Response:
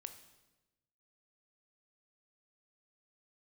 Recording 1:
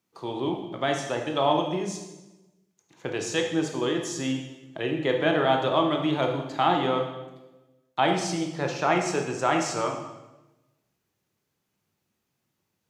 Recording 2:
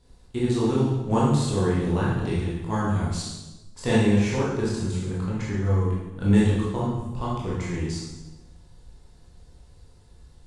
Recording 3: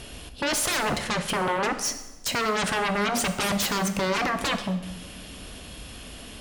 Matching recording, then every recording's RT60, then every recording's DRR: 3; 1.1, 1.1, 1.1 s; 2.0, -7.5, 8.0 dB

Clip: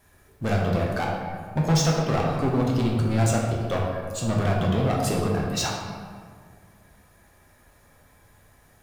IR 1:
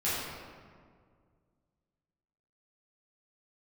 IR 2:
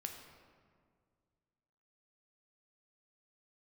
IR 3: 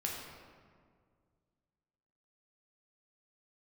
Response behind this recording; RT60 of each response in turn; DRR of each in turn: 3; 1.9, 2.0, 2.0 s; -11.5, 3.0, -2.5 dB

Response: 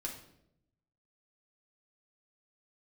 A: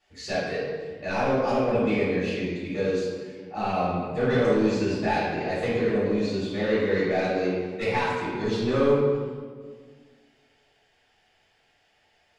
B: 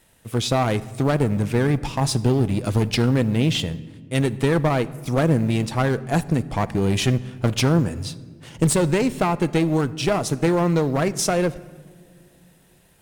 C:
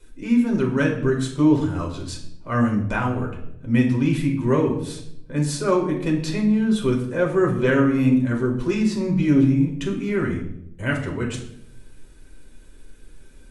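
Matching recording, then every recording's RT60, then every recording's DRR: C; 1.7 s, not exponential, 0.75 s; -11.5, 13.5, -1.0 dB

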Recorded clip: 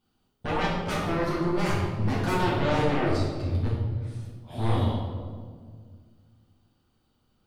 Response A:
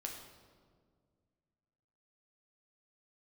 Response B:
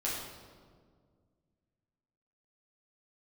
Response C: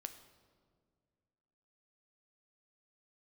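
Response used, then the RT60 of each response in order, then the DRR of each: B; 1.9, 1.9, 2.0 s; 0.5, -7.5, 8.0 dB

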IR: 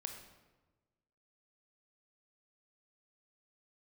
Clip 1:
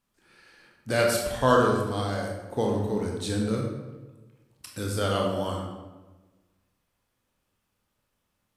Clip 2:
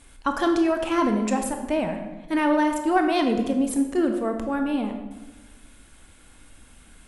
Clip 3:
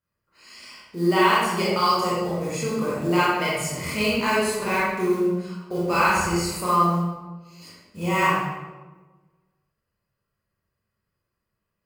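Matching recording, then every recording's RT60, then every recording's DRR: 2; 1.2, 1.2, 1.2 s; -1.0, 4.5, -8.5 dB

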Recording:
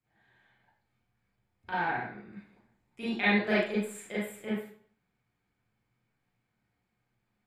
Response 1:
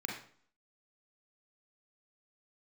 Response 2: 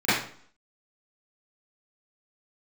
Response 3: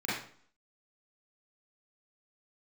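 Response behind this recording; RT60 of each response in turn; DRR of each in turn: 3; 0.50, 0.50, 0.50 s; -1.0, -18.5, -10.0 dB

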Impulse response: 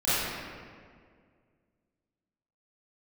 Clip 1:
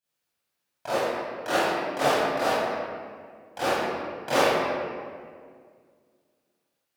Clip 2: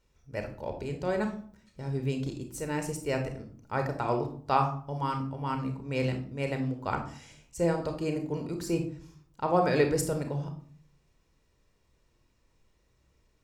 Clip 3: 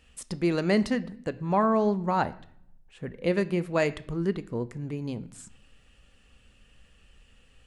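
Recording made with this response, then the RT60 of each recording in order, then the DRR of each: 1; 2.0 s, 0.50 s, not exponential; -15.0, 5.0, 14.0 dB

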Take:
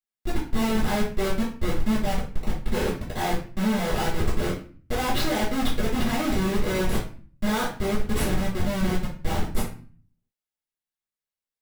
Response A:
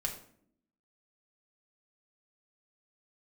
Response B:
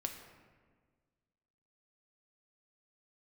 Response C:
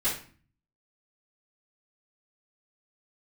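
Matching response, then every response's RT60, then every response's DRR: C; 0.60, 1.6, 0.40 s; -0.5, 3.5, -13.5 dB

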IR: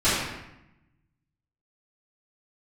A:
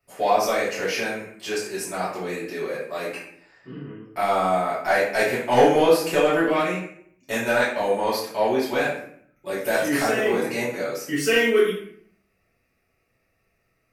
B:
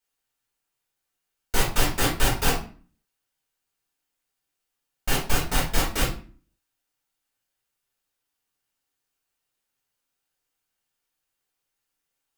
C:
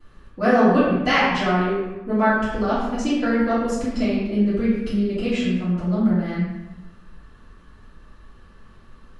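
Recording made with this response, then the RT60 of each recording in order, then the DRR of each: C; 0.60, 0.40, 0.90 s; -10.5, -6.0, -16.0 dB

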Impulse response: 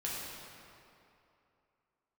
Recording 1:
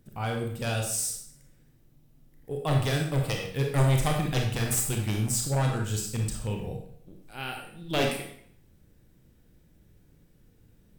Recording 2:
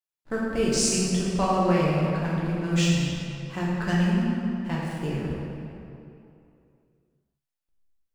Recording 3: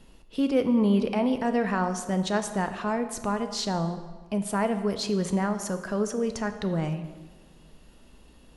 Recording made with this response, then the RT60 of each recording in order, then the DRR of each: 2; 0.65, 2.8, 1.4 s; 1.0, -6.5, 8.0 dB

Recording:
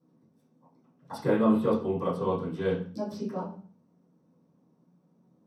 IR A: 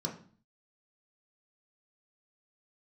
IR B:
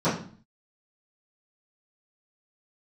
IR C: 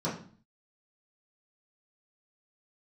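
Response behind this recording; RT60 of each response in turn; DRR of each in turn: B; 0.45, 0.45, 0.45 s; -1.0, -17.0, -9.5 dB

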